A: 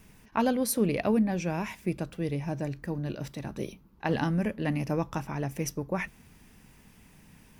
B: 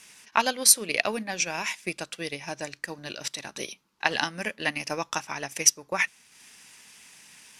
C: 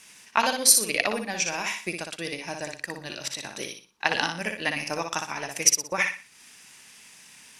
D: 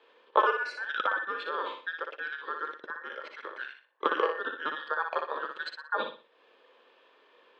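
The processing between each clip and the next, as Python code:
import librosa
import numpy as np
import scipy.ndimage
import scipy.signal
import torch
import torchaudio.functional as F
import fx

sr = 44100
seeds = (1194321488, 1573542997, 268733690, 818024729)

y1 = fx.weighting(x, sr, curve='ITU-R 468')
y1 = fx.transient(y1, sr, attack_db=4, sustain_db=-6)
y1 = y1 * 10.0 ** (3.0 / 20.0)
y2 = fx.echo_feedback(y1, sr, ms=60, feedback_pct=31, wet_db=-5.5)
y3 = fx.band_invert(y2, sr, width_hz=2000)
y3 = fx.cabinet(y3, sr, low_hz=410.0, low_slope=24, high_hz=2200.0, hz=(500.0, 740.0, 2100.0), db=(7, -6, -10))
y3 = y3 * 10.0 ** (1.0 / 20.0)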